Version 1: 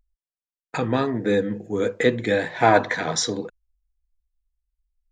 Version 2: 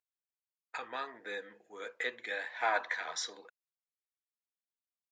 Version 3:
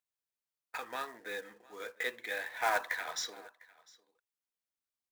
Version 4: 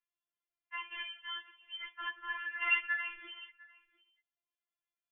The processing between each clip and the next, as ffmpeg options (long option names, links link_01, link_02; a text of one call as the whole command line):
ffmpeg -i in.wav -af "highpass=1100,aemphasis=mode=reproduction:type=50kf,volume=-7.5dB" out.wav
ffmpeg -i in.wav -af "acrusher=bits=3:mode=log:mix=0:aa=0.000001,aecho=1:1:702:0.0668" out.wav
ffmpeg -i in.wav -af "lowpass=frequency=3000:width_type=q:width=0.5098,lowpass=frequency=3000:width_type=q:width=0.6013,lowpass=frequency=3000:width_type=q:width=0.9,lowpass=frequency=3000:width_type=q:width=2.563,afreqshift=-3500,afftfilt=real='re*4*eq(mod(b,16),0)':imag='im*4*eq(mod(b,16),0)':win_size=2048:overlap=0.75,volume=3dB" out.wav